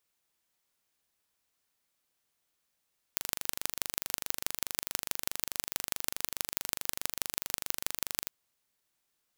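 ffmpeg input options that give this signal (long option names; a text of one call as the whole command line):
ffmpeg -f lavfi -i "aevalsrc='0.891*eq(mod(n,1785),0)*(0.5+0.5*eq(mod(n,7140),0))':duration=5.14:sample_rate=44100" out.wav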